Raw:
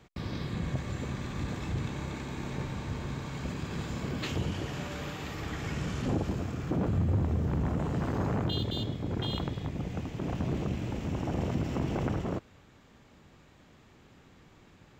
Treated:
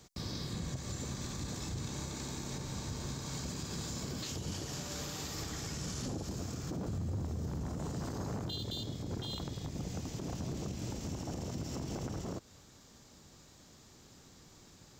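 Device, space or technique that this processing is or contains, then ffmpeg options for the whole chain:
over-bright horn tweeter: -af "highshelf=frequency=3700:width_type=q:width=1.5:gain=12,alimiter=level_in=4dB:limit=-24dB:level=0:latency=1:release=188,volume=-4dB,volume=-2dB"

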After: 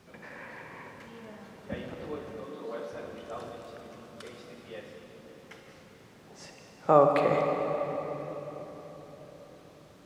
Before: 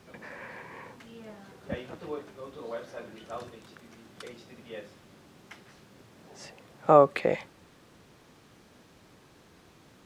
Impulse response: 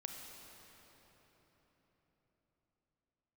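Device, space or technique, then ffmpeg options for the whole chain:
cathedral: -filter_complex "[1:a]atrim=start_sample=2205[link_01];[0:a][link_01]afir=irnorm=-1:irlink=0,asettb=1/sr,asplit=3[link_02][link_03][link_04];[link_02]atrim=end=2.464[link_05];[link_03]atrim=start=2.46:end=2.93,asetpts=PTS-STARTPTS,afade=type=in:duration=0.004:curve=qsin,afade=type=out:start_time=0.466:duration=0.004:curve=qsin,highpass=frequency=160:width=0.5412,highpass=frequency=160:width=1.3066[link_06];[link_04]atrim=start=2.926[link_07];[link_05][link_06]acrossfade=duration=0.004:curve1=hsin:curve2=qsin[link_08];[link_08][link_07]acrossfade=duration=0.004:curve1=qsin:curve2=hsin,volume=2dB"

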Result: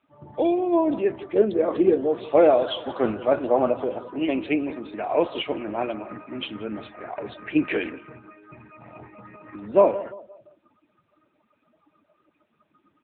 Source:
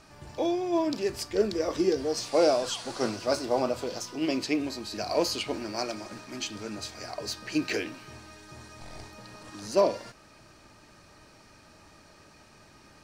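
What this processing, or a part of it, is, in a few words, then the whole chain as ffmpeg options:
mobile call with aggressive noise cancelling: -filter_complex "[0:a]highpass=frequency=61:poles=1,asettb=1/sr,asplit=3[link_01][link_02][link_03];[link_01]atrim=end=4.194[link_04];[link_02]atrim=start=4.19:end=5.68,asetpts=PTS-STARTPTS,afade=type=in:duration=0.004:curve=qsin,afade=type=out:start_time=1.486:duration=0.004:curve=qsin,lowshelf=frequency=260:gain=-5.5[link_05];[link_03]atrim=start=5.676[link_06];[link_04][link_05]acrossfade=duration=0.004:curve1=hsin:curve2=qsin[link_07];[link_07][link_06]acrossfade=duration=0.004:curve1=qsin:curve2=hsin,highpass=frequency=120:poles=1,aecho=1:1:173|346|519|692:0.15|0.0643|0.0277|0.0119,afftdn=noise_reduction=22:noise_floor=-44,volume=7dB" -ar 8000 -c:a libopencore_amrnb -b:a 7950

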